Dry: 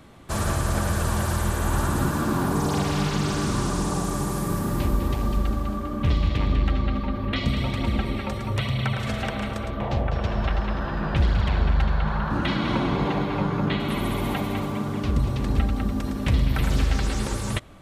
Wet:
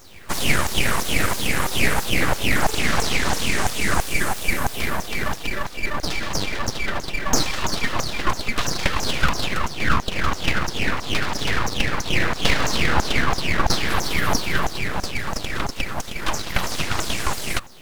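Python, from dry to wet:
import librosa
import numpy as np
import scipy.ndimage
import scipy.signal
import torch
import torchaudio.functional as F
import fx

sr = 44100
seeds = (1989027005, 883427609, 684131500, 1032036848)

y = fx.filter_lfo_highpass(x, sr, shape='saw_down', hz=3.0, low_hz=390.0, high_hz=3200.0, q=6.0)
y = np.abs(y)
y = fx.quant_dither(y, sr, seeds[0], bits=10, dither='none')
y = y * 10.0 ** (6.5 / 20.0)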